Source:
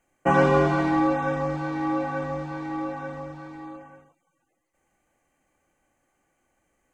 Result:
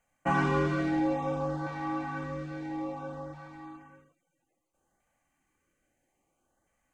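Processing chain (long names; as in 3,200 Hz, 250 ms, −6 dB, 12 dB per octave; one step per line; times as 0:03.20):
auto-filter notch saw up 0.6 Hz 310–2,700 Hz
in parallel at −9.5 dB: soft clipping −25 dBFS, distortion −9 dB
on the sum: level −6.5 dB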